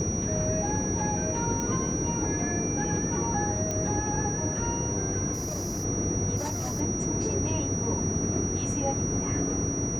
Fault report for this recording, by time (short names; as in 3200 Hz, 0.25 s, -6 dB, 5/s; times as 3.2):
tone 5800 Hz -32 dBFS
1.6 pop -18 dBFS
3.71 pop -17 dBFS
5.33–5.85 clipped -28.5 dBFS
6.36–6.81 clipped -27.5 dBFS